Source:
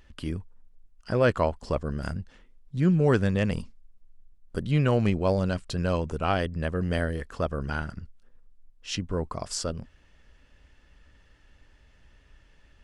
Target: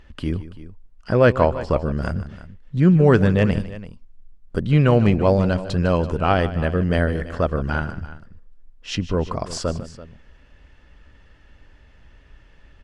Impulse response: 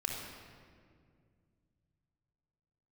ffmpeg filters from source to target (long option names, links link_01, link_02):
-af "lowpass=frequency=3000:poles=1,aecho=1:1:152|335:0.178|0.15,volume=7.5dB"